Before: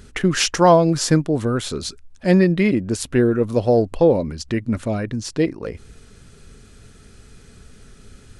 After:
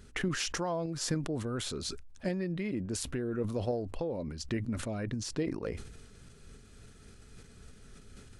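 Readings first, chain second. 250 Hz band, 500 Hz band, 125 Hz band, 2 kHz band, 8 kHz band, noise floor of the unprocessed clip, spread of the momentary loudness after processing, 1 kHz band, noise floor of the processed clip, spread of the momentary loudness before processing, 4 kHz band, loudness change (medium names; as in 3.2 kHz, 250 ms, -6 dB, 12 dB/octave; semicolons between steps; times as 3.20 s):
-16.0 dB, -17.5 dB, -14.5 dB, -13.5 dB, -11.5 dB, -47 dBFS, 11 LU, -19.5 dB, -55 dBFS, 11 LU, -12.0 dB, -16.0 dB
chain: compression 6:1, threshold -22 dBFS, peak gain reduction 13.5 dB; tremolo saw up 3.5 Hz, depth 40%; decay stretcher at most 64 dB/s; trim -7 dB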